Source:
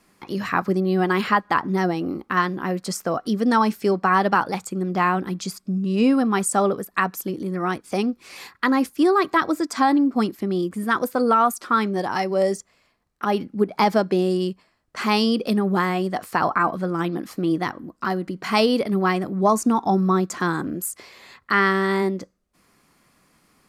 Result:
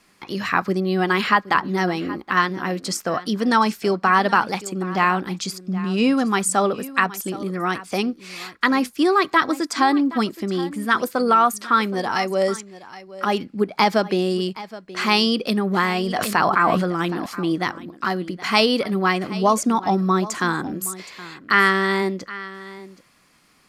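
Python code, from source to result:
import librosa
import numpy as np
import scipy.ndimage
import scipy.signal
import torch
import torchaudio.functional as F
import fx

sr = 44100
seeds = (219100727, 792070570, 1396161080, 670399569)

y = fx.peak_eq(x, sr, hz=3400.0, db=7.0, octaves=2.7)
y = y + 10.0 ** (-17.0 / 20.0) * np.pad(y, (int(771 * sr / 1000.0), 0))[:len(y)]
y = fx.sustainer(y, sr, db_per_s=27.0, at=(15.98, 17.26))
y = y * 10.0 ** (-1.0 / 20.0)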